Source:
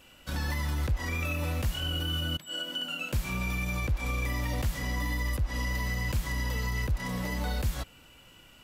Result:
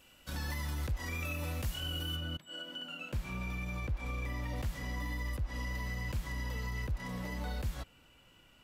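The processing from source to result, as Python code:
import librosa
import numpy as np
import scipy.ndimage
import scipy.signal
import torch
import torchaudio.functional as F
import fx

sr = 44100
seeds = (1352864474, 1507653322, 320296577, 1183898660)

y = fx.high_shelf(x, sr, hz=4600.0, db=fx.steps((0.0, 4.0), (2.15, -10.0), (4.55, -5.0)))
y = y * 10.0 ** (-6.5 / 20.0)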